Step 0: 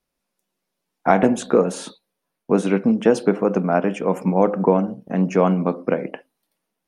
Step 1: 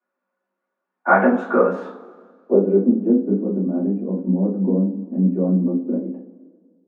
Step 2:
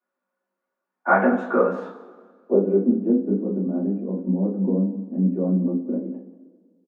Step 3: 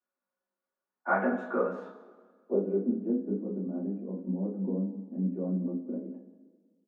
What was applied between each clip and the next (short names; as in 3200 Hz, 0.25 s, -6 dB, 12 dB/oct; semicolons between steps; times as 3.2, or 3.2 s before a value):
steep high-pass 190 Hz 96 dB/oct; low-pass sweep 1400 Hz -> 270 Hz, 1.74–3.01; two-slope reverb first 0.27 s, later 1.9 s, from -22 dB, DRR -9 dB; gain -9.5 dB
echo 0.187 s -17.5 dB; gain -3 dB
resonator 210 Hz, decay 1.2 s, mix 60%; gain -2 dB